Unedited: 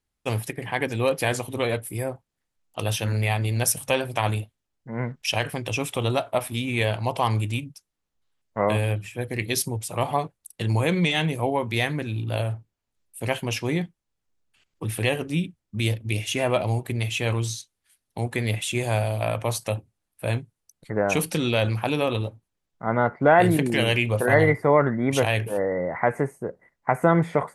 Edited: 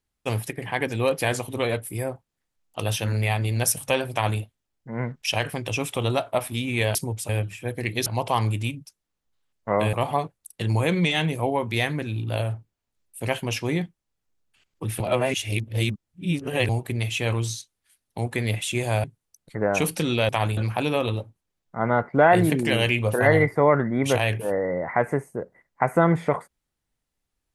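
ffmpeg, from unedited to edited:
-filter_complex "[0:a]asplit=10[a][b][c][d][e][f][g][h][i][j];[a]atrim=end=6.952[k];[b]atrim=start=9.588:end=9.932[l];[c]atrim=start=8.818:end=9.592[m];[d]atrim=start=6.948:end=8.822[n];[e]atrim=start=9.928:end=15.002[o];[f]atrim=start=14.998:end=16.692,asetpts=PTS-STARTPTS,areverse[p];[g]atrim=start=16.688:end=19.042[q];[h]atrim=start=20.388:end=21.642[r];[i]atrim=start=4.118:end=4.402[s];[j]atrim=start=21.638[t];[k][l]acrossfade=d=0.004:c1=hsin:c2=hsin[u];[u][m]acrossfade=d=0.004:c1=hsin:c2=hsin[v];[v][n]acrossfade=d=0.004:c1=hsin:c2=hsin[w];[w][o]acrossfade=d=0.004:c1=hsin:c2=hsin[x];[x][p]acrossfade=d=0.004:c1=hsin:c2=hsin[y];[y][q]acrossfade=d=0.004:c1=hsin:c2=hsin[z];[z][r]acrossfade=d=0.004:c1=hsin:c2=hsin[aa];[aa][s]acrossfade=d=0.004:c1=hsin:c2=hsin[ab];[ab][t]acrossfade=d=0.004:c1=hsin:c2=hsin"

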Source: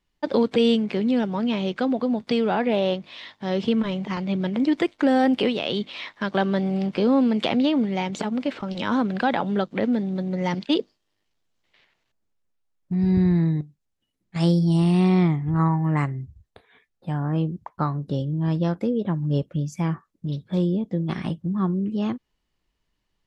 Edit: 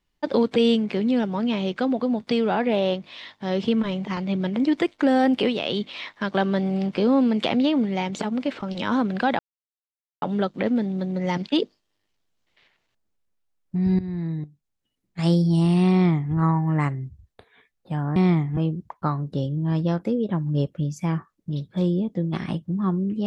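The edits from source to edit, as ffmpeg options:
-filter_complex "[0:a]asplit=5[a][b][c][d][e];[a]atrim=end=9.39,asetpts=PTS-STARTPTS,afade=t=out:st=9.386:d=0.004:c=hsin,apad=pad_dur=0.83[f];[b]atrim=start=9.39:end=13.16,asetpts=PTS-STARTPTS,afade=t=in:d=0.004:c=hsin,afade=t=out:st=3.766:d=0.004:c=hsin:silence=0.177828[g];[c]atrim=start=13.16:end=17.332,asetpts=PTS-STARTPTS,afade=t=in:d=1.36:c=qsin:silence=0.177828[h];[d]atrim=start=15.088:end=15.502[i];[e]atrim=start=17.328[j];[f][g][h]concat=n=3:v=0:a=1[k];[k][i]acrossfade=d=0.004:c1=hsin:c2=hsin[l];[l][j]acrossfade=d=0.004:c1=hsin:c2=hsin"

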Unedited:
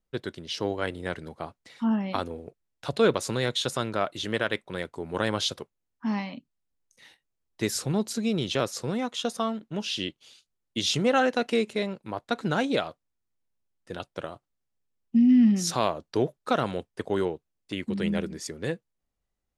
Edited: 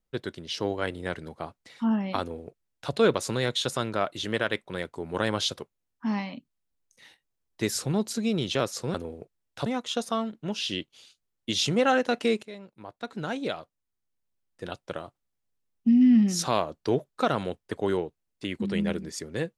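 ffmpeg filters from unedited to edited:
-filter_complex "[0:a]asplit=4[a][b][c][d];[a]atrim=end=8.942[e];[b]atrim=start=2.198:end=2.922[f];[c]atrim=start=8.938:end=11.71,asetpts=PTS-STARTPTS,afade=t=out:st=2.768:d=0.004:c=hsin:silence=0.177828[g];[d]atrim=start=11.71,asetpts=PTS-STARTPTS,afade=t=in:d=2.22:silence=0.177828[h];[e][f]acrossfade=d=0.004:c1=hsin:c2=hsin[i];[g][h]concat=n=2:v=0:a=1[j];[i][j]acrossfade=d=0.004:c1=hsin:c2=hsin"

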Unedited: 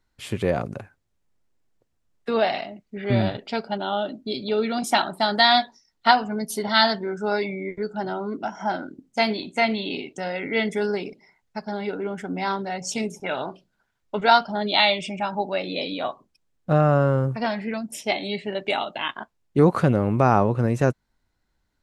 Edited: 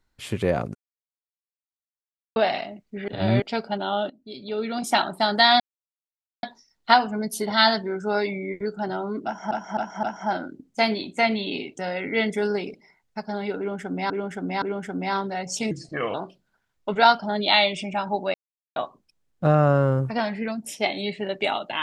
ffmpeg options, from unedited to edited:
-filter_complex "[0:a]asplit=16[a][b][c][d][e][f][g][h][i][j][k][l][m][n][o][p];[a]atrim=end=0.75,asetpts=PTS-STARTPTS,afade=t=out:st=0.746:d=0.004:c=hsin[q];[b]atrim=start=0.75:end=2.36,asetpts=PTS-STARTPTS,volume=0[r];[c]atrim=start=2.36:end=3.082,asetpts=PTS-STARTPTS,afade=t=in:d=0.004:c=hsin[s];[d]atrim=start=3.078:end=3.422,asetpts=PTS-STARTPTS,areverse[t];[e]atrim=start=3.418:end=4.1,asetpts=PTS-STARTPTS,afade=t=out:st=0.678:d=0.004:c=hsin:silence=0.0891251[u];[f]atrim=start=4.1:end=5.6,asetpts=PTS-STARTPTS,afade=t=in:d=0.92:silence=0.0891251,afade=t=out:st=1.496:d=0.004:c=hsin,apad=pad_dur=0.83[v];[g]atrim=start=5.6:end=8.682,asetpts=PTS-STARTPTS,afade=t=in:d=0.004:c=hsin[w];[h]atrim=start=8.418:end=8.682[x];[i]atrim=start=8.418:end=8.682[y];[j]atrim=start=8.418:end=12.492[z];[k]atrim=start=11.968:end=12.492[aa];[l]atrim=start=11.968:end=13.064[ab];[m]atrim=start=13.06:end=13.4,asetpts=PTS-STARTPTS,asetrate=34839,aresample=44100[ac];[n]atrim=start=13.396:end=15.6,asetpts=PTS-STARTPTS,afade=t=out:st=2.2:d=0.004:c=hsin[ad];[o]atrim=start=15.6:end=16.02,asetpts=PTS-STARTPTS,volume=0[ae];[p]atrim=start=16.02,asetpts=PTS-STARTPTS,afade=t=in:d=0.004:c=hsin[af];[q][r][s]concat=n=3:v=0:a=1[ag];[ag][t]acrossfade=d=0.004:c1=hsin:c2=hsin[ah];[u][v][w]concat=n=3:v=0:a=1[ai];[ah][ai]acrossfade=d=0.004:c1=hsin:c2=hsin[aj];[aj][x]acrossfade=d=0.004:c1=hsin:c2=hsin[ak];[ak][y]acrossfade=d=0.004:c1=hsin:c2=hsin[al];[al][z]acrossfade=d=0.004:c1=hsin:c2=hsin[am];[am][aa]acrossfade=d=0.004:c1=hsin:c2=hsin[an];[an][ab]acrossfade=d=0.004:c1=hsin:c2=hsin[ao];[ao][ac]acrossfade=d=0.004:c1=hsin:c2=hsin[ap];[ad][ae][af]concat=n=3:v=0:a=1[aq];[ap][aq]acrossfade=d=0.004:c1=hsin:c2=hsin"

